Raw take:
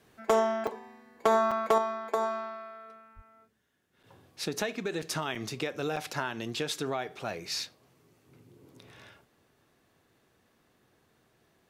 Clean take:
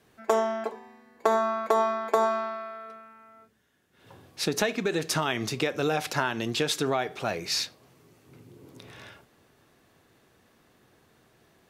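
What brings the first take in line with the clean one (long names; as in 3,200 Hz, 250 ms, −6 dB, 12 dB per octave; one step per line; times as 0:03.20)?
clipped peaks rebuilt −16 dBFS
high-pass at the plosives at 0:03.15
repair the gap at 0:00.67/0:01.51/0:04.03/0:05.02/0:05.35/0:05.96, 5.1 ms
level correction +6 dB, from 0:01.78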